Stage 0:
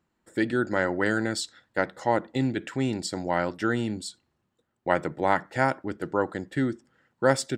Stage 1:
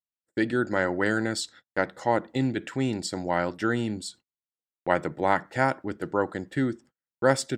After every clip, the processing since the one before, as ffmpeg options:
-af "agate=range=-36dB:threshold=-49dB:ratio=16:detection=peak"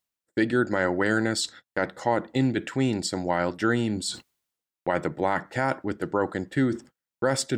-af "areverse,acompressor=mode=upward:threshold=-27dB:ratio=2.5,areverse,alimiter=limit=-14dB:level=0:latency=1:release=25,volume=2.5dB"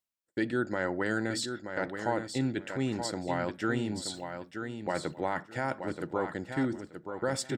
-af "aecho=1:1:928|1856|2784:0.422|0.0843|0.0169,volume=-7dB"

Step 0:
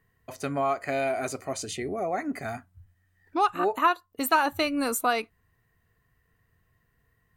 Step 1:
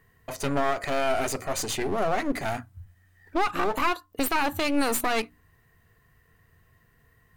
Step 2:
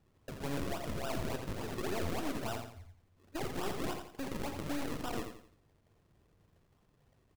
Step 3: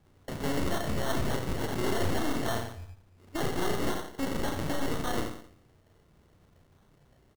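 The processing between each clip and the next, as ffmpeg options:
-af "alimiter=limit=-21dB:level=0:latency=1:release=41,aeval=exprs='clip(val(0),-1,0.0075)':c=same,bandreject=f=60:t=h:w=6,bandreject=f=120:t=h:w=6,bandreject=f=180:t=h:w=6,bandreject=f=240:t=h:w=6,bandreject=f=300:t=h:w=6,volume=8dB"
-filter_complex "[0:a]alimiter=limit=-20dB:level=0:latency=1:release=25,acrusher=samples=40:mix=1:aa=0.000001:lfo=1:lforange=40:lforate=3.5,asplit=2[a][b];[b]aecho=0:1:86|172|258|344:0.447|0.165|0.0612|0.0226[c];[a][c]amix=inputs=2:normalize=0,volume=-8dB"
-filter_complex "[0:a]volume=29.5dB,asoftclip=hard,volume=-29.5dB,asplit=2[a][b];[b]adelay=33,volume=-3.5dB[c];[a][c]amix=inputs=2:normalize=0,acrusher=samples=18:mix=1:aa=0.000001,volume=6dB"

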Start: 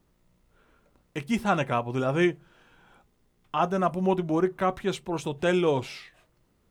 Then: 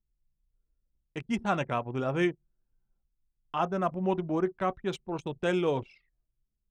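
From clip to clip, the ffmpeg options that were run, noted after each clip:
-af "anlmdn=3.98,volume=-4dB"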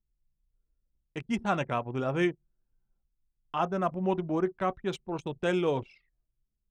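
-af anull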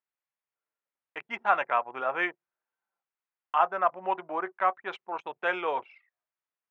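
-af "asuperpass=centerf=1300:order=4:qfactor=0.82,volume=7.5dB"

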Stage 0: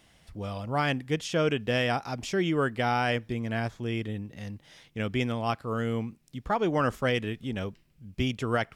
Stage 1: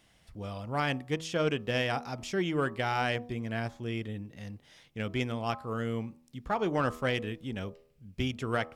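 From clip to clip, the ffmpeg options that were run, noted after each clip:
-af "aeval=exprs='0.178*(cos(1*acos(clip(val(0)/0.178,-1,1)))-cos(1*PI/2))+0.0141*(cos(3*acos(clip(val(0)/0.178,-1,1)))-cos(3*PI/2))':c=same,bandreject=f=80.66:t=h:w=4,bandreject=f=161.32:t=h:w=4,bandreject=f=241.98:t=h:w=4,bandreject=f=322.64:t=h:w=4,bandreject=f=403.3:t=h:w=4,bandreject=f=483.96:t=h:w=4,bandreject=f=564.62:t=h:w=4,bandreject=f=645.28:t=h:w=4,bandreject=f=725.94:t=h:w=4,bandreject=f=806.6:t=h:w=4,bandreject=f=887.26:t=h:w=4,bandreject=f=967.92:t=h:w=4,bandreject=f=1.04858k:t=h:w=4,bandreject=f=1.12924k:t=h:w=4,bandreject=f=1.2099k:t=h:w=4,bandreject=f=1.29056k:t=h:w=4,volume=-1.5dB"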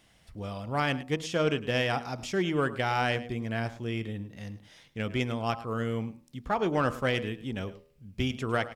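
-af "aecho=1:1:106:0.15,volume=2dB"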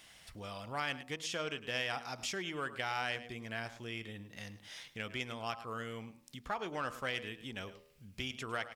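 -af "acompressor=threshold=-46dB:ratio=2,tiltshelf=f=690:g=-6.5,volume=1dB"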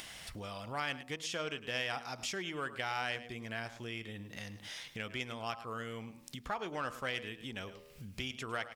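-af "acompressor=mode=upward:threshold=-39dB:ratio=2.5"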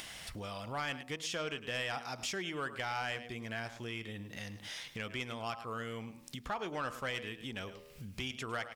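-af "asoftclip=type=tanh:threshold=-28.5dB,volume=1.5dB"

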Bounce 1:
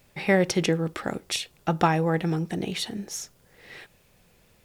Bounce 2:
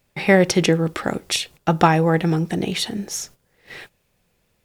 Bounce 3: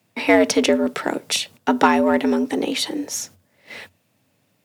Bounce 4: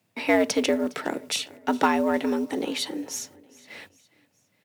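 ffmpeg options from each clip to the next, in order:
-af "agate=range=-13dB:threshold=-48dB:ratio=16:detection=peak,volume=6.5dB"
-filter_complex "[0:a]afreqshift=88,asplit=2[a][b];[b]asoftclip=type=tanh:threshold=-16dB,volume=-7dB[c];[a][c]amix=inputs=2:normalize=0,volume=-2dB"
-af "acrusher=bits=8:mode=log:mix=0:aa=0.000001,aecho=1:1:410|820|1230:0.075|0.036|0.0173,volume=-6dB"

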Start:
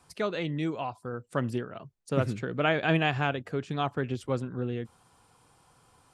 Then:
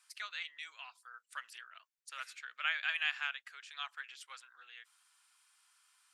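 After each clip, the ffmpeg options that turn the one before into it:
-af "highpass=f=1.5k:w=0.5412,highpass=f=1.5k:w=1.3066,volume=-2.5dB"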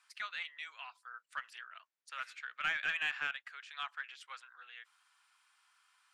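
-filter_complex "[0:a]asplit=2[a][b];[b]highpass=f=720:p=1,volume=12dB,asoftclip=type=tanh:threshold=-18dB[c];[a][c]amix=inputs=2:normalize=0,lowpass=f=1.6k:p=1,volume=-6dB,volume=-1dB"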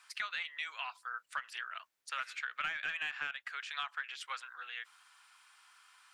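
-af "acompressor=threshold=-43dB:ratio=8,volume=8.5dB"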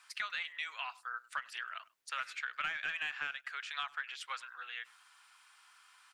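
-filter_complex "[0:a]asplit=2[a][b];[b]adelay=100,highpass=300,lowpass=3.4k,asoftclip=type=hard:threshold=-33dB,volume=-22dB[c];[a][c]amix=inputs=2:normalize=0"

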